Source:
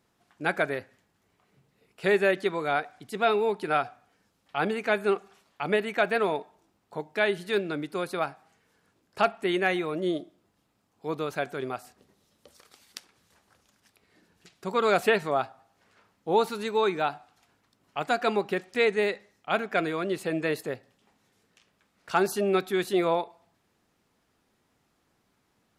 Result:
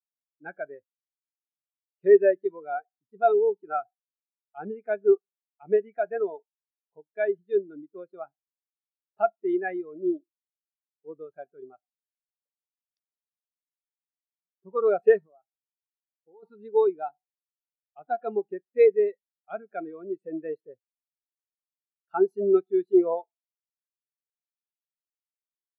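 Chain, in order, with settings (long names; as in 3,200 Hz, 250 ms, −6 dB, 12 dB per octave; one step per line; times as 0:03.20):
0:15.25–0:16.43: downward compressor 3 to 1, threshold −39 dBFS, peak gain reduction 16 dB
every bin expanded away from the loudest bin 2.5 to 1
level +3.5 dB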